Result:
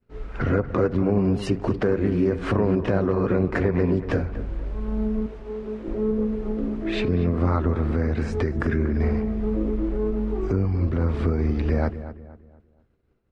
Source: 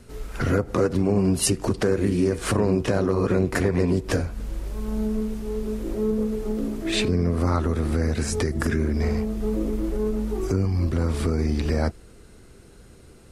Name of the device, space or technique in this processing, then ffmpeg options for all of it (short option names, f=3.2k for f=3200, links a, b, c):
hearing-loss simulation: -filter_complex "[0:a]asettb=1/sr,asplit=3[a][b][c];[a]atrim=end=5.264[d];[b]atrim=start=5.26:end=5.88,asetpts=PTS-STARTPTS,afade=t=in:d=0.004:c=qsin,afade=t=out:st=0.616:d=0.004:c=qsin,highpass=f=270:p=1[e];[c]atrim=start=5.876[f];[d][e]acrossfade=d=0.004:c1=hsin:c2=qsin[g];[g][f]acrossfade=d=0.004:c1=qsin:c2=hsin,lowpass=2.4k,agate=range=-33dB:threshold=-35dB:ratio=3:detection=peak,asplit=2[h][i];[i]adelay=237,lowpass=f=2k:p=1,volume=-12.5dB,asplit=2[j][k];[k]adelay=237,lowpass=f=2k:p=1,volume=0.38,asplit=2[l][m];[m]adelay=237,lowpass=f=2k:p=1,volume=0.38,asplit=2[n][o];[o]adelay=237,lowpass=f=2k:p=1,volume=0.38[p];[h][j][l][n][p]amix=inputs=5:normalize=0"